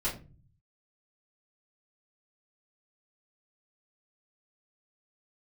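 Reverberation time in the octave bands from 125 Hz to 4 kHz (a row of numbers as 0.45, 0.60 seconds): 0.95, 0.75, 0.40, 0.30, 0.25, 0.20 seconds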